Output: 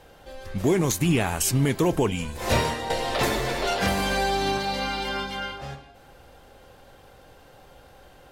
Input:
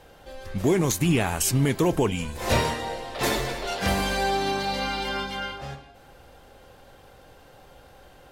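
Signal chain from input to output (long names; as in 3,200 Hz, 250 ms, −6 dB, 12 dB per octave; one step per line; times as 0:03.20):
0:02.90–0:04.58: multiband upward and downward compressor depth 100%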